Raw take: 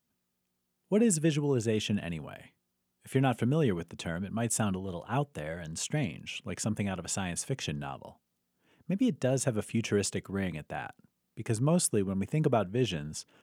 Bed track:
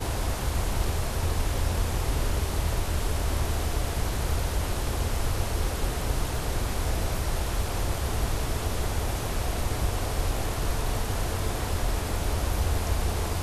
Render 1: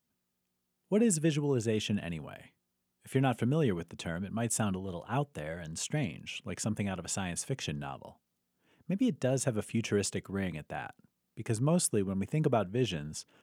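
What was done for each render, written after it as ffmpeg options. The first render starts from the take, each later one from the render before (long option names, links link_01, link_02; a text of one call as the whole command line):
ffmpeg -i in.wav -af "volume=-1.5dB" out.wav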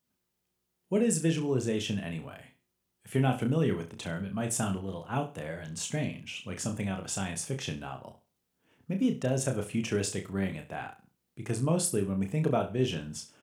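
ffmpeg -i in.wav -filter_complex "[0:a]asplit=2[link_01][link_02];[link_02]adelay=31,volume=-5.5dB[link_03];[link_01][link_03]amix=inputs=2:normalize=0,aecho=1:1:67|134|201:0.2|0.0519|0.0135" out.wav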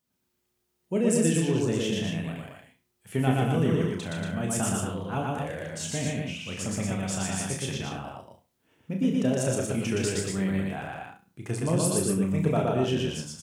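ffmpeg -i in.wav -filter_complex "[0:a]asplit=2[link_01][link_02];[link_02]adelay=42,volume=-11dB[link_03];[link_01][link_03]amix=inputs=2:normalize=0,asplit=2[link_04][link_05];[link_05]aecho=0:1:119.5|233.2:0.891|0.631[link_06];[link_04][link_06]amix=inputs=2:normalize=0" out.wav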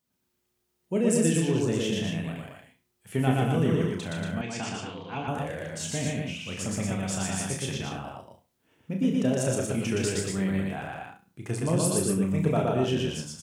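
ffmpeg -i in.wav -filter_complex "[0:a]asettb=1/sr,asplit=3[link_01][link_02][link_03];[link_01]atrim=end=4.414[link_04];[link_02]atrim=start=4.41:end=5.28,asetpts=PTS-STARTPTS,afade=type=in:duration=0.004:curve=qsin,afade=type=out:start_time=0.866:duration=0.004:curve=qsin,highpass=170,equalizer=frequency=200:width_type=q:width=4:gain=-9,equalizer=frequency=360:width_type=q:width=4:gain=-6,equalizer=frequency=590:width_type=q:width=4:gain=-9,equalizer=frequency=1300:width_type=q:width=4:gain=-7,equalizer=frequency=2300:width_type=q:width=4:gain=8,equalizer=frequency=4500:width_type=q:width=4:gain=8,lowpass=frequency=5600:width=0.5412,lowpass=frequency=5600:width=1.3066[link_05];[link_03]atrim=start=5.276[link_06];[link_04][link_05]acrossfade=duration=0.004:curve1=hsin:curve2=qsin[link_07];[link_07][link_06]acrossfade=duration=0.004:curve1=qsin:curve2=hsin" out.wav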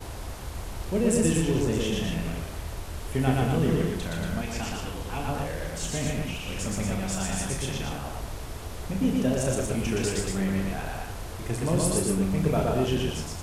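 ffmpeg -i in.wav -i bed.wav -filter_complex "[1:a]volume=-8.5dB[link_01];[0:a][link_01]amix=inputs=2:normalize=0" out.wav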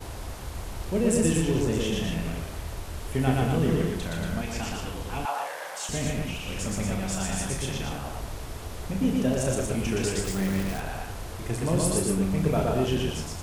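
ffmpeg -i in.wav -filter_complex "[0:a]asettb=1/sr,asplit=3[link_01][link_02][link_03];[link_01]atrim=end=5.254[link_04];[link_02]atrim=start=5.25:end=5.89,asetpts=PTS-STARTPTS,afade=type=in:duration=0.004:curve=qsin,afade=type=out:start_time=0.636:duration=0.004:curve=qsin,highpass=frequency=850:width_type=q:width=2.2[link_05];[link_03]atrim=start=5.886[link_06];[link_04][link_05]acrossfade=duration=0.004:curve1=hsin:curve2=qsin[link_07];[link_07][link_06]acrossfade=duration=0.004:curve1=qsin:curve2=hsin,asettb=1/sr,asplit=3[link_08][link_09][link_10];[link_08]atrim=end=10.244[link_11];[link_09]atrim=start=10.24:end=10.8,asetpts=PTS-STARTPTS,afade=type=in:duration=0.004:curve=qsin,afade=type=out:start_time=0.556:duration=0.004:curve=qsin,acrusher=bits=7:dc=4:mix=0:aa=0.000001[link_12];[link_10]atrim=start=10.796[link_13];[link_11][link_12]acrossfade=duration=0.004:curve1=hsin:curve2=qsin[link_14];[link_14][link_13]acrossfade=duration=0.004:curve1=qsin:curve2=hsin" out.wav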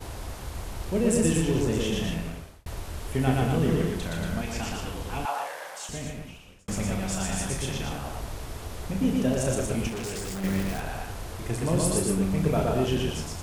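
ffmpeg -i in.wav -filter_complex "[0:a]asettb=1/sr,asplit=3[link_01][link_02][link_03];[link_01]atrim=end=9.884[link_04];[link_02]atrim=start=9.88:end=10.44,asetpts=PTS-STARTPTS,afade=type=in:duration=0.004:curve=qsin,afade=type=out:start_time=0.556:duration=0.004:curve=qsin,volume=31dB,asoftclip=hard,volume=-31dB[link_05];[link_03]atrim=start=10.436[link_06];[link_04][link_05]acrossfade=duration=0.004:curve1=hsin:curve2=qsin[link_07];[link_07][link_06]acrossfade=duration=0.004:curve1=qsin:curve2=hsin,asplit=3[link_08][link_09][link_10];[link_08]atrim=end=2.66,asetpts=PTS-STARTPTS,afade=type=out:start_time=2.09:duration=0.57[link_11];[link_09]atrim=start=2.66:end=6.68,asetpts=PTS-STARTPTS,afade=type=in:duration=0.004:curve=hsin,afade=type=out:start_time=2.68:duration=1.34[link_12];[link_10]atrim=start=6.68,asetpts=PTS-STARTPTS,afade=type=in:duration=0.004:curve=hsin[link_13];[link_11][link_12][link_13]concat=n=3:v=0:a=1" out.wav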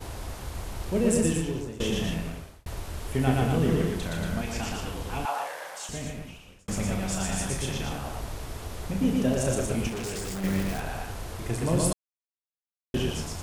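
ffmpeg -i in.wav -filter_complex "[0:a]asplit=4[link_01][link_02][link_03][link_04];[link_01]atrim=end=1.8,asetpts=PTS-STARTPTS,afade=type=out:start_time=1.14:duration=0.66:silence=0.133352[link_05];[link_02]atrim=start=1.8:end=11.93,asetpts=PTS-STARTPTS,afade=type=in:duration=0.004:curve=hsin:silence=0.133352,afade=type=out:start_time=10.126:duration=0.004:curve=hsin[link_06];[link_03]atrim=start=11.93:end=12.94,asetpts=PTS-STARTPTS,volume=0[link_07];[link_04]atrim=start=12.94,asetpts=PTS-STARTPTS,afade=type=in:duration=0.004:curve=hsin[link_08];[link_05][link_06][link_07][link_08]concat=n=4:v=0:a=1" out.wav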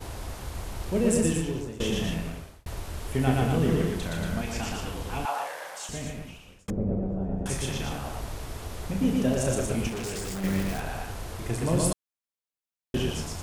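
ffmpeg -i in.wav -filter_complex "[0:a]asettb=1/sr,asplit=3[link_01][link_02][link_03];[link_01]atrim=end=6.704[link_04];[link_02]atrim=start=6.7:end=7.46,asetpts=PTS-STARTPTS,afade=type=in:duration=0.004:curve=qsin,afade=type=out:start_time=0.756:duration=0.004:curve=qsin,lowpass=frequency=440:width_type=q:width=1.8[link_05];[link_03]atrim=start=7.456[link_06];[link_04][link_05]acrossfade=duration=0.004:curve1=hsin:curve2=qsin[link_07];[link_07][link_06]acrossfade=duration=0.004:curve1=qsin:curve2=hsin" out.wav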